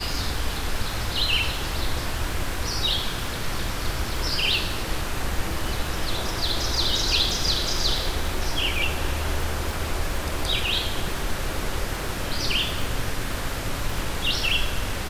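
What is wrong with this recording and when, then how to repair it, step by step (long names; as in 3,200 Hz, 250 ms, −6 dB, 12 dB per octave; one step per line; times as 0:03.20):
surface crackle 56 per second −28 dBFS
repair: click removal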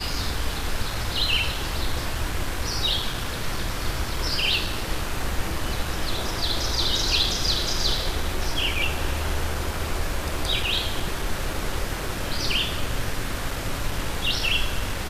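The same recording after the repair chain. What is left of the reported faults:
none of them is left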